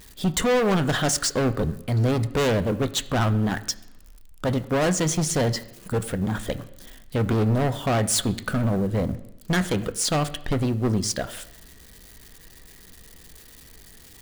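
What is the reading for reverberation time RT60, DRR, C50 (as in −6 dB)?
0.85 s, 10.0 dB, 16.0 dB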